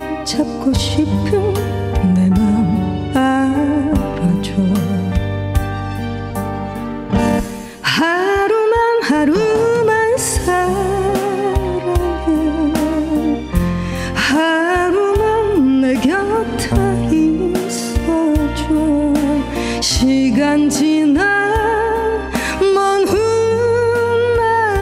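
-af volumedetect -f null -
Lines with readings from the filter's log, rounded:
mean_volume: -15.1 dB
max_volume: -3.0 dB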